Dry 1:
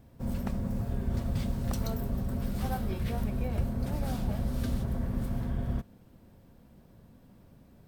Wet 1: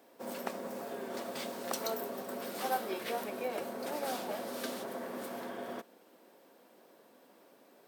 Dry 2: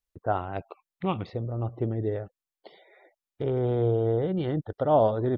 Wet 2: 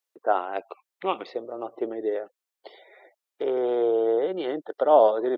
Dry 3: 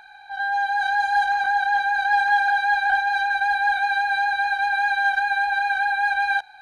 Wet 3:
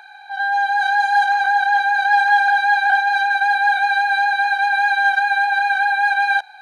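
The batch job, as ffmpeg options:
ffmpeg -i in.wav -af "highpass=frequency=350:width=0.5412,highpass=frequency=350:width=1.3066,volume=4.5dB" out.wav

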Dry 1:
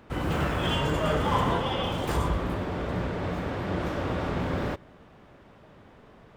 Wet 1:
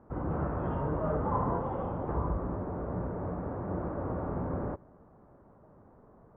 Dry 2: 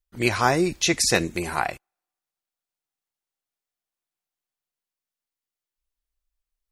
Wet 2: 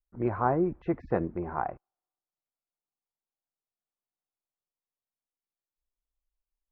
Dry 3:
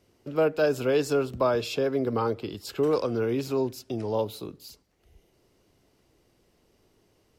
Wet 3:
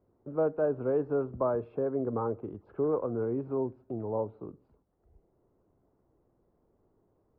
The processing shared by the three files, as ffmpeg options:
ffmpeg -i in.wav -af "lowpass=frequency=1200:width=0.5412,lowpass=frequency=1200:width=1.3066,volume=-4.5dB" out.wav

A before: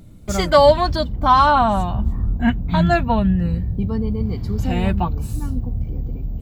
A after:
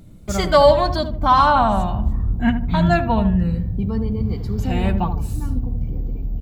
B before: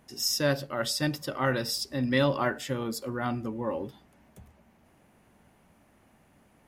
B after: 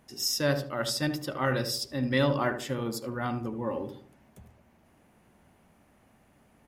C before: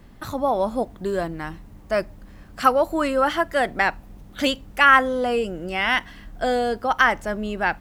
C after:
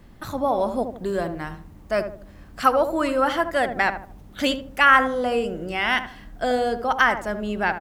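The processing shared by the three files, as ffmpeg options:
ffmpeg -i in.wav -filter_complex "[0:a]asplit=2[link_01][link_02];[link_02]adelay=76,lowpass=frequency=930:poles=1,volume=-7dB,asplit=2[link_03][link_04];[link_04]adelay=76,lowpass=frequency=930:poles=1,volume=0.42,asplit=2[link_05][link_06];[link_06]adelay=76,lowpass=frequency=930:poles=1,volume=0.42,asplit=2[link_07][link_08];[link_08]adelay=76,lowpass=frequency=930:poles=1,volume=0.42,asplit=2[link_09][link_10];[link_10]adelay=76,lowpass=frequency=930:poles=1,volume=0.42[link_11];[link_01][link_03][link_05][link_07][link_09][link_11]amix=inputs=6:normalize=0,volume=-1dB" out.wav

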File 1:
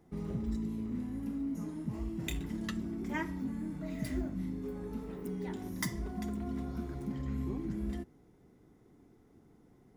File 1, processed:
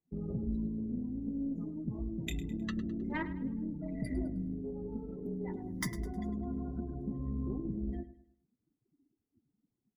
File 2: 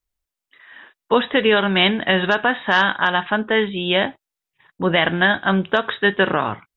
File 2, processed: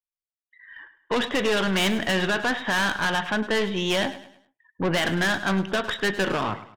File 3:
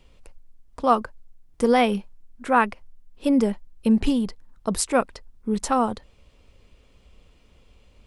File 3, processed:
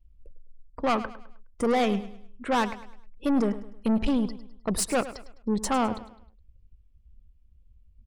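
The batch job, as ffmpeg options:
ffmpeg -i in.wav -af "afftdn=noise_reduction=30:noise_floor=-44,aeval=exprs='(tanh(11.2*val(0)+0.35)-tanh(0.35))/11.2':channel_layout=same,aecho=1:1:104|208|312|416:0.188|0.0716|0.0272|0.0103,volume=1dB" out.wav

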